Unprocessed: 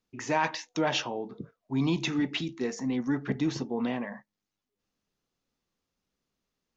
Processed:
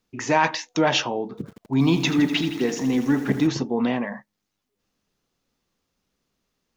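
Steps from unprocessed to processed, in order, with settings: 1.29–3.47 s: bit-crushed delay 82 ms, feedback 80%, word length 8-bit, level -12 dB; trim +7.5 dB

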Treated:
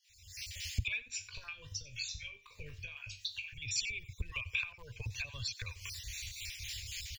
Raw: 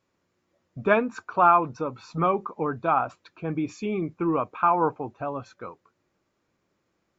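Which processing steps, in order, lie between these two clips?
random holes in the spectrogram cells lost 37%; recorder AGC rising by 71 dB/s; inverse Chebyshev band-stop 180–1400 Hz, stop band 40 dB; peaking EQ 150 Hz -10.5 dB 1.1 oct; compression 4:1, threshold -49 dBFS, peak gain reduction 20.5 dB; 1.08–3.54 s: feedback comb 50 Hz, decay 0.28 s, harmonics all, mix 80%; harmonic tremolo 3.8 Hz, depth 50%, crossover 700 Hz; delay 92 ms -18.5 dB; trim +15 dB

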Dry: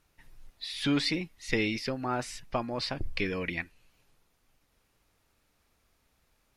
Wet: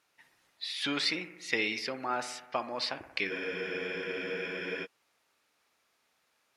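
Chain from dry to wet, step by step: frequency weighting A; on a send: bucket-brigade echo 61 ms, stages 1024, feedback 68%, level -13.5 dB; on the sum: spectral freeze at 3.33 s, 1.51 s

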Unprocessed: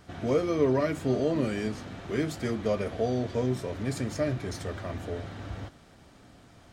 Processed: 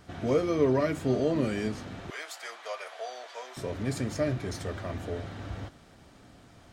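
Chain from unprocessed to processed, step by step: 2.10–3.57 s: high-pass 730 Hz 24 dB/octave

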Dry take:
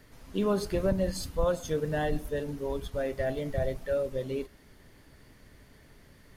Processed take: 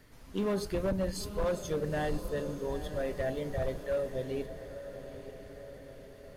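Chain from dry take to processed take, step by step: echo that smears into a reverb 923 ms, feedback 57%, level -11.5 dB; overload inside the chain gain 23 dB; trim -2.5 dB

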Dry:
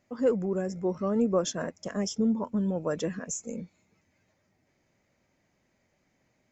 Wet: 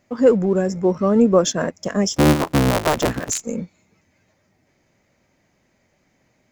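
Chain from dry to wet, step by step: 2.14–3.43 s: cycle switcher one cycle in 3, inverted; in parallel at -7 dB: crossover distortion -47 dBFS; on the sum: trim +8 dB

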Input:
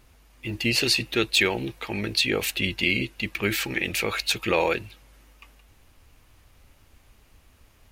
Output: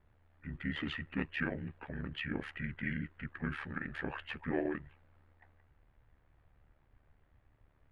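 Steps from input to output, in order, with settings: distance through air 290 m; formant shift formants -6 st; ring modulator 37 Hz; trim -7.5 dB

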